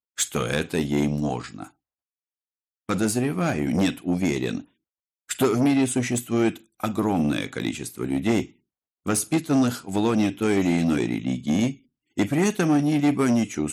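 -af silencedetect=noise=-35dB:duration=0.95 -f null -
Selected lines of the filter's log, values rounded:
silence_start: 1.66
silence_end: 2.89 | silence_duration: 1.23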